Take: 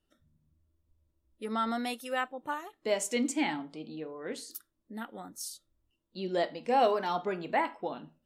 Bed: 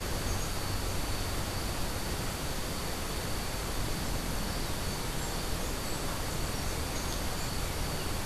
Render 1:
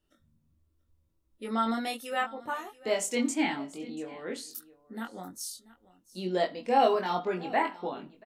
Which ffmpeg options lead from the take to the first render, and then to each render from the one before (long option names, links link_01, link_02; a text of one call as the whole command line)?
ffmpeg -i in.wav -filter_complex "[0:a]asplit=2[link_01][link_02];[link_02]adelay=22,volume=-3dB[link_03];[link_01][link_03]amix=inputs=2:normalize=0,aecho=1:1:686:0.1" out.wav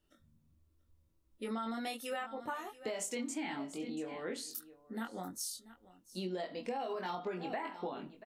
ffmpeg -i in.wav -af "alimiter=limit=-22.5dB:level=0:latency=1:release=90,acompressor=threshold=-36dB:ratio=5" out.wav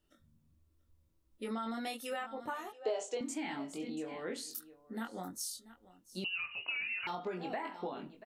ffmpeg -i in.wav -filter_complex "[0:a]asettb=1/sr,asplit=3[link_01][link_02][link_03];[link_01]atrim=end=2.724[link_04];[link_02]atrim=start=2.72:end=3.21,asetpts=PTS-STARTPTS,afade=type=in:duration=0.004:curve=qsin,afade=type=out:start_time=0.486:duration=0.004:curve=qsin,highpass=frequency=340:width=0.5412,highpass=frequency=340:width=1.3066,equalizer=frequency=430:width_type=q:width=4:gain=7,equalizer=frequency=720:width_type=q:width=4:gain=9,equalizer=frequency=2100:width_type=q:width=4:gain=-9,equalizer=frequency=5300:width_type=q:width=4:gain=-5,lowpass=frequency=6600:width=0.5412,lowpass=frequency=6600:width=1.3066[link_05];[link_03]atrim=start=3.206[link_06];[link_04][link_05]acrossfade=duration=0.004:curve1=hsin:curve2=qsin[link_07];[link_07][link_06]acrossfade=duration=0.004:curve1=qsin:curve2=hsin,asettb=1/sr,asplit=3[link_08][link_09][link_10];[link_08]atrim=end=6.244[link_11];[link_09]atrim=start=6.24:end=7.07,asetpts=PTS-STARTPTS,afade=type=in:duration=0.004:curve=qsin,afade=type=out:start_time=0.826:duration=0.004:curve=qsin,lowpass=frequency=2600:width_type=q:width=0.5098,lowpass=frequency=2600:width_type=q:width=0.6013,lowpass=frequency=2600:width_type=q:width=0.9,lowpass=frequency=2600:width_type=q:width=2.563,afreqshift=-3100[link_12];[link_10]atrim=start=7.066[link_13];[link_11][link_12]acrossfade=duration=0.004:curve1=hsin:curve2=qsin[link_14];[link_14][link_13]acrossfade=duration=0.004:curve1=qsin:curve2=hsin" out.wav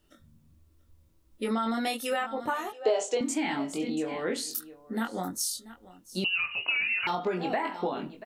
ffmpeg -i in.wav -af "volume=9.5dB" out.wav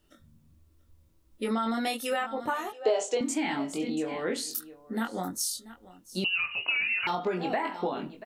ffmpeg -i in.wav -af anull out.wav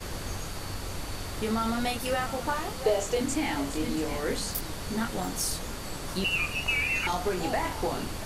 ffmpeg -i in.wav -i bed.wav -filter_complex "[1:a]volume=-2.5dB[link_01];[0:a][link_01]amix=inputs=2:normalize=0" out.wav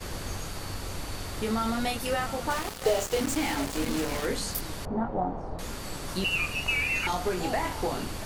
ffmpeg -i in.wav -filter_complex "[0:a]asettb=1/sr,asplit=3[link_01][link_02][link_03];[link_01]atrim=end=2.504[link_04];[link_02]atrim=start=2.5:end=4.26,asetpts=PTS-STARTPTS,afade=type=in:duration=0.004:curve=qsin,afade=type=out:start_time=1.756:duration=0.004:curve=qsin,acrusher=bits=4:mix=0:aa=0.5[link_05];[link_03]atrim=start=4.256[link_06];[link_04][link_05]acrossfade=duration=0.004:curve1=hsin:curve2=qsin[link_07];[link_07][link_06]acrossfade=duration=0.004:curve1=qsin:curve2=hsin,asettb=1/sr,asplit=3[link_08][link_09][link_10];[link_08]atrim=end=4.854[link_11];[link_09]atrim=start=4.85:end=5.59,asetpts=PTS-STARTPTS,afade=type=in:duration=0.004:curve=qsin,afade=type=out:start_time=0.736:duration=0.004:curve=qsin,lowpass=frequency=780:width_type=q:width=2.2[link_12];[link_10]atrim=start=5.586[link_13];[link_11][link_12]acrossfade=duration=0.004:curve1=hsin:curve2=qsin[link_14];[link_14][link_13]acrossfade=duration=0.004:curve1=qsin:curve2=hsin" out.wav